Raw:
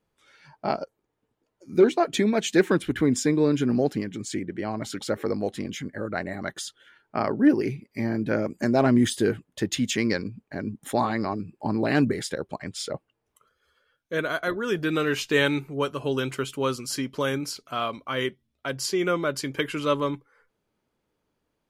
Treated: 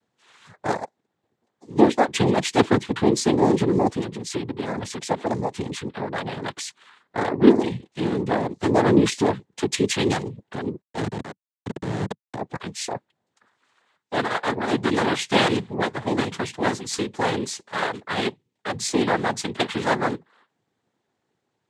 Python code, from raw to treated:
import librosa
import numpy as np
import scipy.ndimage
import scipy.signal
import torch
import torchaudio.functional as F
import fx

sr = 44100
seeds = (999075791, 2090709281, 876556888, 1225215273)

y = fx.quant_float(x, sr, bits=8)
y = fx.schmitt(y, sr, flips_db=-20.0, at=(10.81, 12.36))
y = fx.noise_vocoder(y, sr, seeds[0], bands=6)
y = y * librosa.db_to_amplitude(3.0)